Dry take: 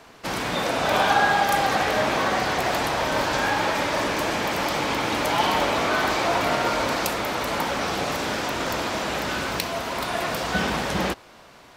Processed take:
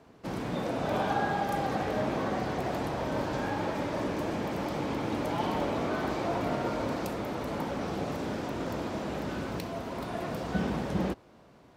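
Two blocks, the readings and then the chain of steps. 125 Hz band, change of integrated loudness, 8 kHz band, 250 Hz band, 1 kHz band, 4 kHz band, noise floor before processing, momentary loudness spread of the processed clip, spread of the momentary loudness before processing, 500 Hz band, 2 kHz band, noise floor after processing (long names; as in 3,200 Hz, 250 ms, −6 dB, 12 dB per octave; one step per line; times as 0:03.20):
−1.5 dB, −9.0 dB, −17.0 dB, −2.5 dB, −10.5 dB, −16.5 dB, −49 dBFS, 5 LU, 6 LU, −6.5 dB, −14.5 dB, −56 dBFS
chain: high-pass filter 90 Hz 6 dB per octave
tilt shelving filter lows +9 dB, about 650 Hz
level −8 dB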